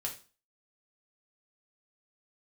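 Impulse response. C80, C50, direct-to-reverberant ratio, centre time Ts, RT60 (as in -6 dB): 16.0 dB, 10.0 dB, -1.0 dB, 16 ms, 0.35 s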